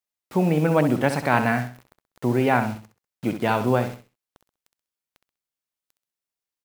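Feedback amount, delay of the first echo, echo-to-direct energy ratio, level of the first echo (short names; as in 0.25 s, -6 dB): 30%, 65 ms, -9.0 dB, -9.5 dB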